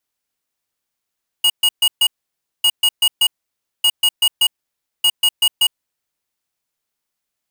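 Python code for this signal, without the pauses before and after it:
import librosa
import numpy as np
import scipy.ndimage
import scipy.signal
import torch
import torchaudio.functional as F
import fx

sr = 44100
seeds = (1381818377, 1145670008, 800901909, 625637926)

y = fx.beep_pattern(sr, wave='square', hz=2880.0, on_s=0.06, off_s=0.13, beeps=4, pause_s=0.57, groups=4, level_db=-13.0)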